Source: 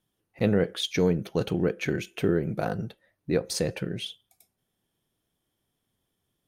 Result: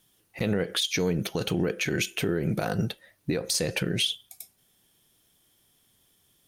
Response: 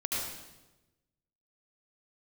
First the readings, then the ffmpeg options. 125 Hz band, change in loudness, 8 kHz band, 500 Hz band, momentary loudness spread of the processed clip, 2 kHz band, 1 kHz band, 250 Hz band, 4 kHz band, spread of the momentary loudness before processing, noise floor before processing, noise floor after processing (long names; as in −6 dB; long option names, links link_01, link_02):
0.0 dB, 0.0 dB, +7.0 dB, −2.5 dB, 10 LU, +4.0 dB, 0.0 dB, −1.5 dB, +6.0 dB, 11 LU, −80 dBFS, −67 dBFS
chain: -af "highshelf=frequency=2100:gain=11,acompressor=threshold=-24dB:ratio=6,alimiter=limit=-22.5dB:level=0:latency=1:release=79,volume=6.5dB"